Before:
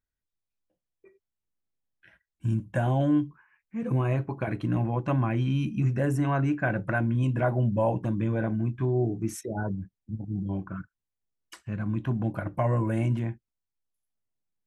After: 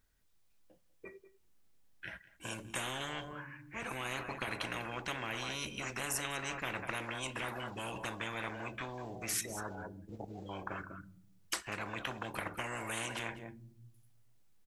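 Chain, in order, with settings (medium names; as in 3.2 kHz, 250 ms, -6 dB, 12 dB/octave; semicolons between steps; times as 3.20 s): delay 196 ms -20 dB; on a send at -22 dB: reverberation RT60 0.65 s, pre-delay 4 ms; on the sum: spectrum-flattening compressor 10:1; trim -5.5 dB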